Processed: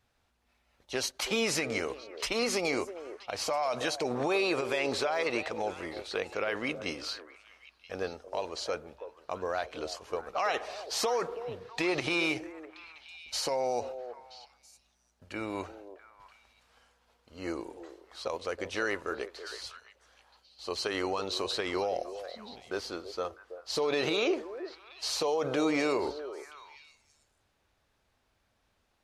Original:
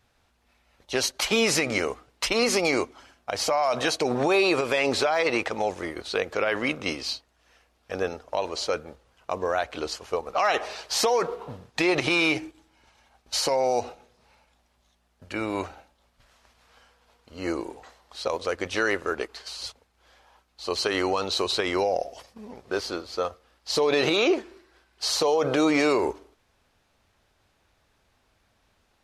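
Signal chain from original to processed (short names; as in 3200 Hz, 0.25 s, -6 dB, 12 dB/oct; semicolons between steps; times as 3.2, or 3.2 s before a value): delay with a stepping band-pass 0.326 s, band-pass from 490 Hz, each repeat 1.4 oct, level -9 dB; gain -7 dB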